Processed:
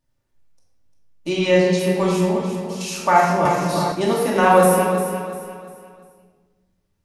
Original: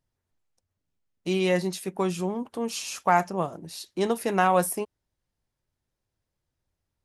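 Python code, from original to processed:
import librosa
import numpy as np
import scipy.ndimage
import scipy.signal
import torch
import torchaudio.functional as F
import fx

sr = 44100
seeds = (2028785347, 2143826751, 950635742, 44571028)

y = fx.lowpass(x, sr, hz=7700.0, slope=24, at=(1.29, 1.79))
y = fx.level_steps(y, sr, step_db=23, at=(2.37, 2.81))
y = fx.echo_feedback(y, sr, ms=349, feedback_pct=37, wet_db=-9)
y = fx.room_shoebox(y, sr, seeds[0], volume_m3=760.0, walls='mixed', distance_m=2.5)
y = fx.band_squash(y, sr, depth_pct=100, at=(3.45, 3.92))
y = y * 10.0 ** (2.0 / 20.0)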